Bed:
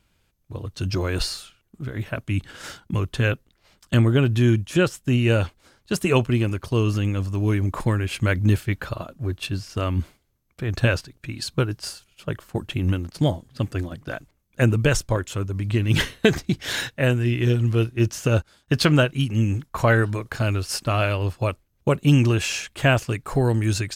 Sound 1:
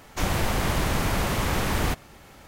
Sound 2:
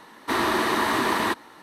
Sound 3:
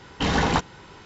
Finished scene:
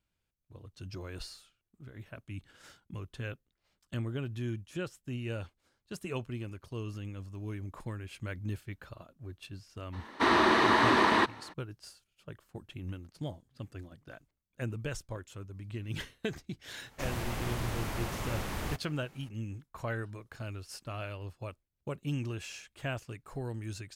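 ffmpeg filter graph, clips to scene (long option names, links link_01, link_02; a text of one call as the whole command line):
ffmpeg -i bed.wav -i cue0.wav -i cue1.wav -filter_complex "[0:a]volume=-18dB[link_01];[2:a]lowpass=5100,atrim=end=1.62,asetpts=PTS-STARTPTS,volume=-1dB,afade=type=in:duration=0.02,afade=type=out:start_time=1.6:duration=0.02,adelay=9920[link_02];[1:a]atrim=end=2.47,asetpts=PTS-STARTPTS,volume=-11.5dB,afade=type=in:duration=0.004:curve=hsin,afade=type=out:start_time=2.466:duration=0.004:curve=hsin,adelay=16820[link_03];[link_01][link_02][link_03]amix=inputs=3:normalize=0" out.wav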